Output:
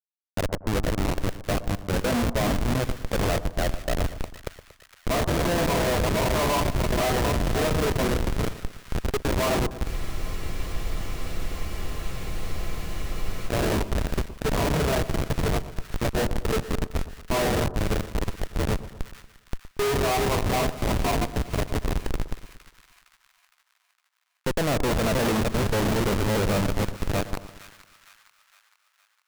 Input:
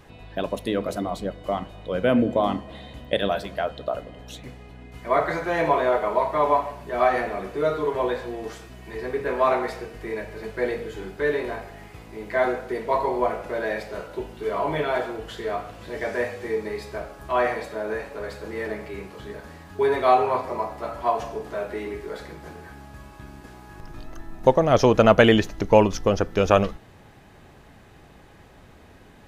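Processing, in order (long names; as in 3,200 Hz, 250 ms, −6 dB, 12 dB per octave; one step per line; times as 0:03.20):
feedback delay that plays each chunk backwards 407 ms, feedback 45%, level −7 dB
in parallel at −1 dB: downward compressor 12 to 1, threshold −34 dBFS, peak gain reduction 24.5 dB
on the sum: comparator with hysteresis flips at −20.5 dBFS
on a send: echo with a time of its own for lows and highs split 1,200 Hz, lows 117 ms, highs 461 ms, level −14 dB
on the sum: frozen spectrum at 0:09.89, 3.59 s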